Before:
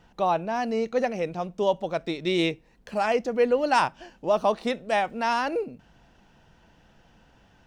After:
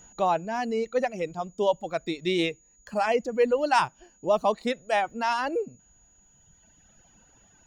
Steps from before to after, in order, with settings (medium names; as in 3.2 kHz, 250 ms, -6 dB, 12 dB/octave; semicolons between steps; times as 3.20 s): whistle 6.8 kHz -51 dBFS; reverb removal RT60 2 s